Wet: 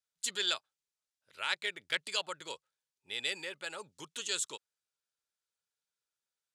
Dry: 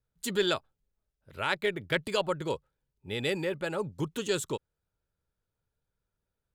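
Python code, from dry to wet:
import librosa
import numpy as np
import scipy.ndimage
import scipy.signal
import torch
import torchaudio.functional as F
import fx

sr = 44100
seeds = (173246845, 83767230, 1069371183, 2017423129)

y = fx.weighting(x, sr, curve='ITU-R 468')
y = F.gain(torch.from_numpy(y), -8.5).numpy()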